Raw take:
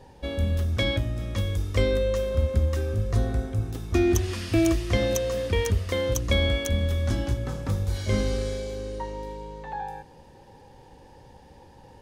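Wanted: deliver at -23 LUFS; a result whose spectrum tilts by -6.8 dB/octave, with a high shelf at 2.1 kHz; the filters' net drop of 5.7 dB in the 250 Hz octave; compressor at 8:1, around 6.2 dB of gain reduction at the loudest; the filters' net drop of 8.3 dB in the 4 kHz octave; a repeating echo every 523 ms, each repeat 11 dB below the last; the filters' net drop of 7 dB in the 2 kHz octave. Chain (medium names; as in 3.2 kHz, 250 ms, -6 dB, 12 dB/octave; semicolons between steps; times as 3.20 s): peaking EQ 250 Hz -8.5 dB; peaking EQ 2 kHz -4 dB; treble shelf 2.1 kHz -5.5 dB; peaking EQ 4 kHz -4 dB; compression 8:1, threshold -25 dBFS; feedback delay 523 ms, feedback 28%, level -11 dB; trim +8.5 dB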